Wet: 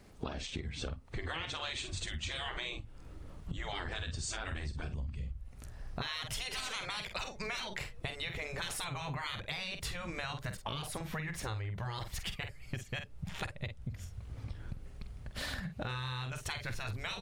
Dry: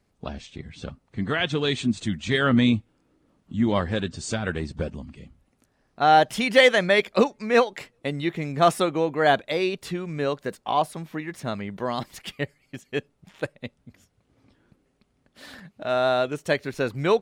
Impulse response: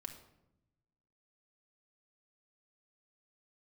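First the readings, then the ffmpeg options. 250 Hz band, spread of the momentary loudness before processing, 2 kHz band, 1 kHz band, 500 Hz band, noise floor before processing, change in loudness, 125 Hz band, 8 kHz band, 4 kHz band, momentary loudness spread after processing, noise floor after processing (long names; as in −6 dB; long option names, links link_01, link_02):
−20.0 dB, 18 LU, −13.0 dB, −18.5 dB, −23.5 dB, −70 dBFS, −15.5 dB, −8.5 dB, −4.0 dB, −8.5 dB, 8 LU, −51 dBFS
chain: -filter_complex "[0:a]afftfilt=real='re*lt(hypot(re,im),0.141)':imag='im*lt(hypot(re,im),0.141)':win_size=1024:overlap=0.75,asplit=2[link_01][link_02];[link_02]adelay=47,volume=-9.5dB[link_03];[link_01][link_03]amix=inputs=2:normalize=0,asubboost=boost=12:cutoff=78,asplit=2[link_04][link_05];[link_05]alimiter=level_in=2dB:limit=-24dB:level=0:latency=1,volume=-2dB,volume=0dB[link_06];[link_04][link_06]amix=inputs=2:normalize=0,acompressor=threshold=-41dB:ratio=10,volume=5dB"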